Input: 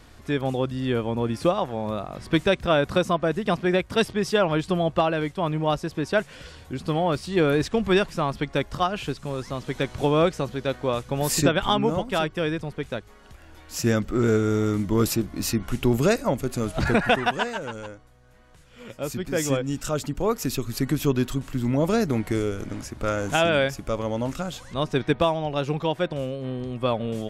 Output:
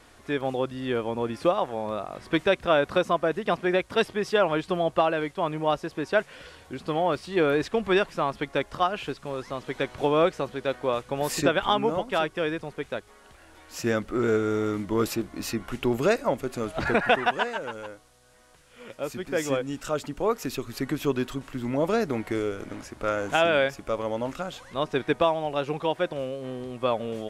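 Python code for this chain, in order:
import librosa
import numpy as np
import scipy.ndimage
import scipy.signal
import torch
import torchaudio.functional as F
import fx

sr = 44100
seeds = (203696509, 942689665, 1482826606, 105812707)

y = fx.bass_treble(x, sr, bass_db=-10, treble_db=-8)
y = fx.dmg_noise_band(y, sr, seeds[0], low_hz=2500.0, high_hz=11000.0, level_db=-65.0)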